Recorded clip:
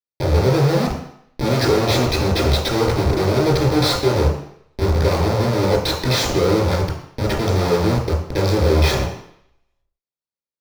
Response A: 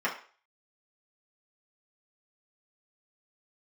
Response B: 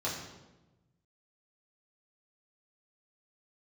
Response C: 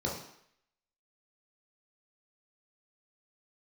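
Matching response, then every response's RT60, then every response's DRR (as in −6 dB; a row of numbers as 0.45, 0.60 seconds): C; 0.40, 1.1, 0.70 seconds; −6.0, −7.5, −3.5 decibels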